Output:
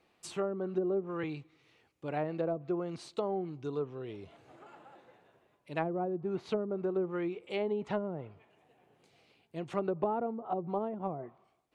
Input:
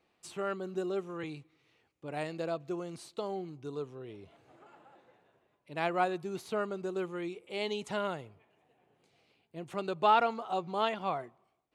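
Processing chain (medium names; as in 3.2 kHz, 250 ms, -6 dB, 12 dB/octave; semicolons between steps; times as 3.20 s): low-pass that closes with the level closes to 390 Hz, closed at -29 dBFS; trim +3.5 dB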